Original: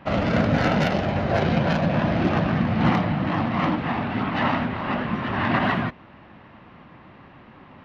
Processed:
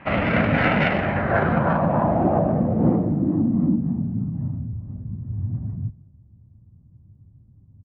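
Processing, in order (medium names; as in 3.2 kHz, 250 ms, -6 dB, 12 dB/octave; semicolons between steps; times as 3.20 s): low-pass sweep 2.3 kHz -> 100 Hz, 0.88–4.76 s; on a send: delay 201 ms -21 dB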